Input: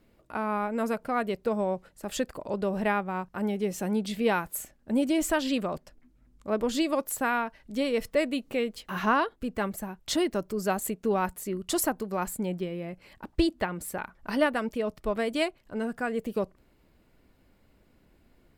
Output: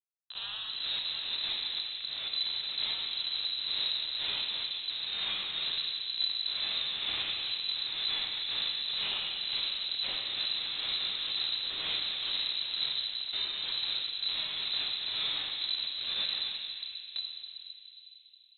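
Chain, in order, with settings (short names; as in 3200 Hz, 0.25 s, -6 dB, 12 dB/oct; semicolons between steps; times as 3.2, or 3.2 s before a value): spectral dilation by 0.12 s; Bessel high-pass 270 Hz, order 4; notches 50/100/150/200/250/300/350 Hz; vibrato 0.71 Hz 13 cents; flange 0.32 Hz, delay 9.7 ms, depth 3.5 ms, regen +65%; diffused feedback echo 1.026 s, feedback 70%, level -10 dB; Schmitt trigger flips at -27.5 dBFS; tremolo 2.1 Hz, depth 55%; plate-style reverb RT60 3.6 s, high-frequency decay 0.5×, DRR -1 dB; inverted band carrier 4000 Hz; gain -5 dB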